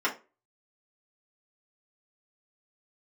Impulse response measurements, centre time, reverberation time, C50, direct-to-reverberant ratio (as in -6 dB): 14 ms, 0.30 s, 13.0 dB, -5.5 dB